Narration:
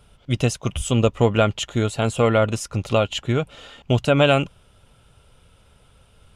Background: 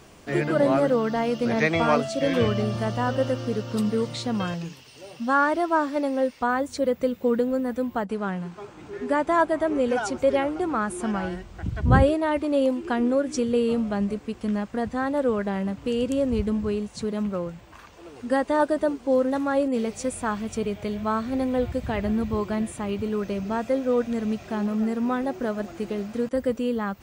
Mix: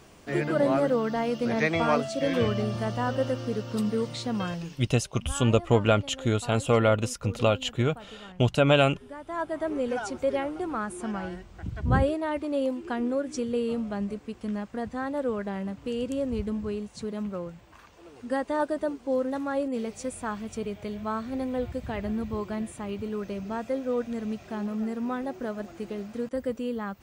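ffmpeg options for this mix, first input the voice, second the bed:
ffmpeg -i stem1.wav -i stem2.wav -filter_complex "[0:a]adelay=4500,volume=-4dB[link_01];[1:a]volume=10dB,afade=type=out:start_time=4.71:duration=0.21:silence=0.16788,afade=type=in:start_time=9.21:duration=0.45:silence=0.223872[link_02];[link_01][link_02]amix=inputs=2:normalize=0" out.wav

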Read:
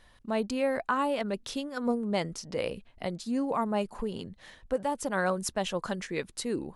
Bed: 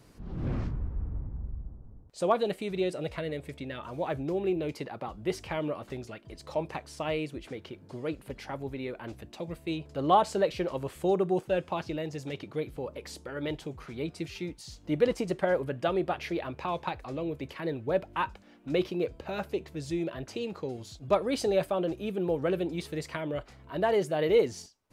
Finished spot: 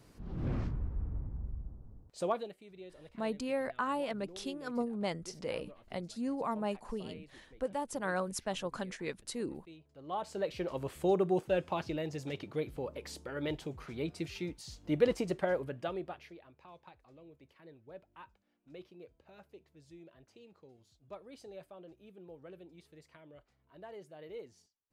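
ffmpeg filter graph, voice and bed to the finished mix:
ffmpeg -i stem1.wav -i stem2.wav -filter_complex "[0:a]adelay=2900,volume=-6dB[link_01];[1:a]volume=15dB,afade=type=out:start_time=2.12:duration=0.41:silence=0.133352,afade=type=in:start_time=10.05:duration=0.89:silence=0.125893,afade=type=out:start_time=15.15:duration=1.23:silence=0.1[link_02];[link_01][link_02]amix=inputs=2:normalize=0" out.wav

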